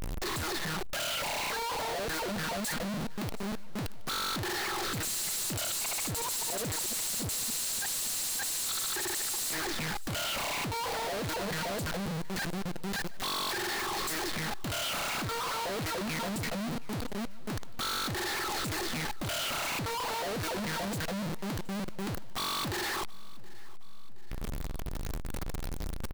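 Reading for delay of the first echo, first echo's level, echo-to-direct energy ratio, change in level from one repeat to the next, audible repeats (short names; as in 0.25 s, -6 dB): 0.722 s, -22.0 dB, -20.5 dB, -5.5 dB, 3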